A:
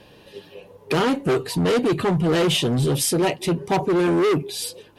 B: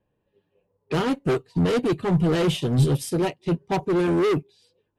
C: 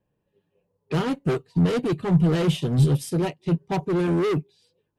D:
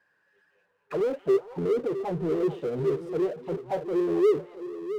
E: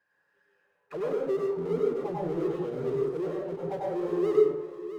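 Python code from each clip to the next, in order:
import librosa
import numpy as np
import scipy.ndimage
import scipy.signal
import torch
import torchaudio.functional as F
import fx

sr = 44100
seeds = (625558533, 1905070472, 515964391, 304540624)

y1 = fx.env_lowpass(x, sr, base_hz=1600.0, full_db=-18.5)
y1 = fx.low_shelf(y1, sr, hz=150.0, db=8.5)
y1 = fx.upward_expand(y1, sr, threshold_db=-32.0, expansion=2.5)
y2 = fx.peak_eq(y1, sr, hz=160.0, db=6.0, octaves=0.51)
y2 = y2 * 10.0 ** (-2.5 / 20.0)
y3 = fx.auto_wah(y2, sr, base_hz=400.0, top_hz=1600.0, q=8.7, full_db=-19.0, direction='down')
y3 = fx.echo_stepped(y3, sr, ms=220, hz=2600.0, octaves=-1.4, feedback_pct=70, wet_db=-10)
y3 = fx.power_curve(y3, sr, exponent=0.7)
y3 = y3 * 10.0 ** (4.5 / 20.0)
y4 = fx.rev_plate(y3, sr, seeds[0], rt60_s=0.66, hf_ratio=0.5, predelay_ms=85, drr_db=-3.0)
y4 = y4 * 10.0 ** (-7.0 / 20.0)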